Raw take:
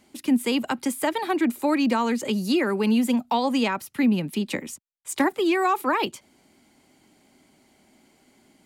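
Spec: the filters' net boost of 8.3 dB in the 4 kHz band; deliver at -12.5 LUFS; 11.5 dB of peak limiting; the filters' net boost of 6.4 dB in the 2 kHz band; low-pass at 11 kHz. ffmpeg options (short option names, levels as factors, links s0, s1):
-af "lowpass=11000,equalizer=f=2000:t=o:g=5.5,equalizer=f=4000:t=o:g=9,volume=5.31,alimiter=limit=0.668:level=0:latency=1"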